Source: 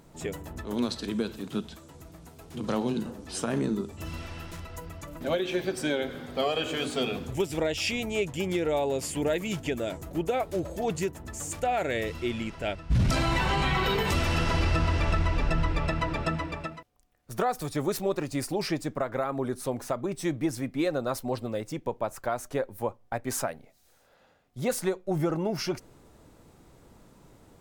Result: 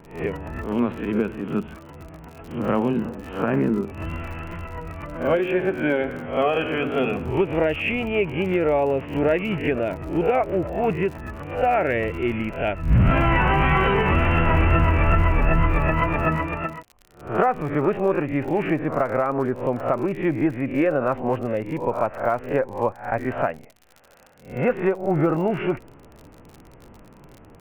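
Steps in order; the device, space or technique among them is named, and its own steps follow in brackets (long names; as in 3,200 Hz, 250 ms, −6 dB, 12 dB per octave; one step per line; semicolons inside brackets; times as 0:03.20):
peak hold with a rise ahead of every peak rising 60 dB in 0.41 s
elliptic low-pass filter 2,800 Hz, stop band 40 dB
lo-fi chain (low-pass filter 3,200 Hz 12 dB per octave; tape wow and flutter 27 cents; surface crackle 52 per second −41 dBFS)
level +7 dB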